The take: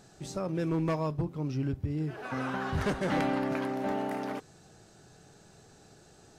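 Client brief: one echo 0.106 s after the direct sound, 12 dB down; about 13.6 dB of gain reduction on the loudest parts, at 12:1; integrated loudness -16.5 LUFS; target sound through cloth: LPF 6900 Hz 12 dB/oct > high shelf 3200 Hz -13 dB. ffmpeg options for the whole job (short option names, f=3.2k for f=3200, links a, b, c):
-af "acompressor=threshold=-40dB:ratio=12,lowpass=6.9k,highshelf=f=3.2k:g=-13,aecho=1:1:106:0.251,volume=28dB"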